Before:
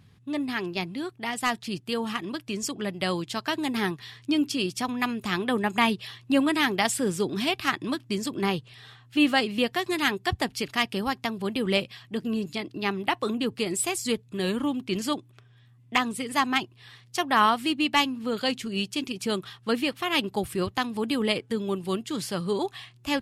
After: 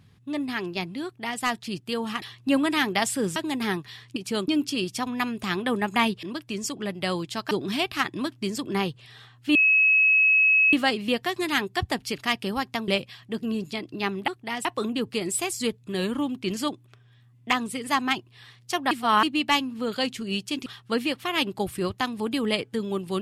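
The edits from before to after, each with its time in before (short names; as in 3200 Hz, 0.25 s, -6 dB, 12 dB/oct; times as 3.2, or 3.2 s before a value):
1.04–1.41 copy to 13.1
2.22–3.5 swap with 6.05–7.19
9.23 add tone 2570 Hz -15.5 dBFS 1.18 s
11.38–11.7 cut
17.36–17.68 reverse
19.11–19.43 move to 4.3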